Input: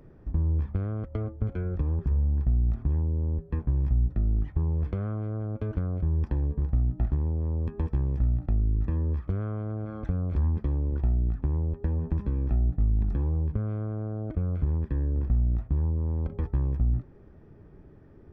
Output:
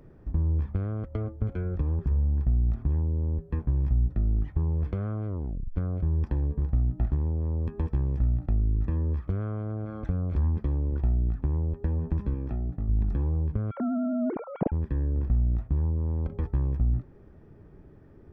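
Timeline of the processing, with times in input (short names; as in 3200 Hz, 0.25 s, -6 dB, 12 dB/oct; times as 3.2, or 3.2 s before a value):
5.27 tape stop 0.49 s
12.34–12.89 HPF 120 Hz 6 dB/oct
13.71–14.72 sine-wave speech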